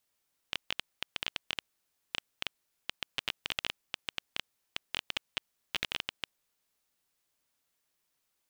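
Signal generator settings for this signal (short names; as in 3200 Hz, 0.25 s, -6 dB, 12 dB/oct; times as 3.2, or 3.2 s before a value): random clicks 10/s -13.5 dBFS 5.93 s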